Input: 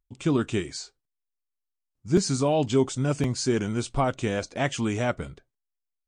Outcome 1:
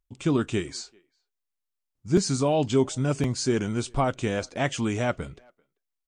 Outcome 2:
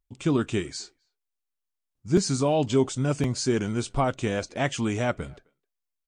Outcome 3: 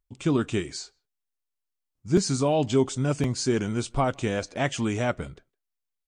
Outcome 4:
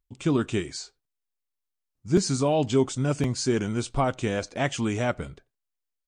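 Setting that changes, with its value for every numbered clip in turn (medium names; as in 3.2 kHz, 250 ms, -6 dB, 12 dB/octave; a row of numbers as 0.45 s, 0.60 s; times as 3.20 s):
speakerphone echo, time: 390 ms, 260 ms, 160 ms, 90 ms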